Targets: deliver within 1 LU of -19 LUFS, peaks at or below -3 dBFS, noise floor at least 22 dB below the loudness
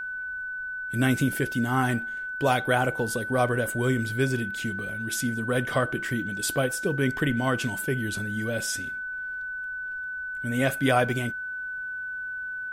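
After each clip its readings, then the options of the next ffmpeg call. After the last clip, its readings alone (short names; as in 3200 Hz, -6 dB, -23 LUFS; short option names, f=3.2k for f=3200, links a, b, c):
steady tone 1500 Hz; tone level -31 dBFS; loudness -27.5 LUFS; peak -9.0 dBFS; loudness target -19.0 LUFS
-> -af "bandreject=f=1.5k:w=30"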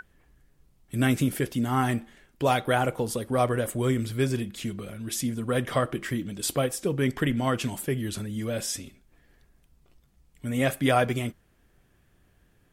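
steady tone none; loudness -27.5 LUFS; peak -9.0 dBFS; loudness target -19.0 LUFS
-> -af "volume=8.5dB,alimiter=limit=-3dB:level=0:latency=1"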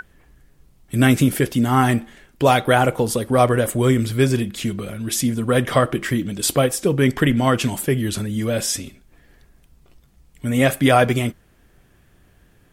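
loudness -19.0 LUFS; peak -3.0 dBFS; noise floor -56 dBFS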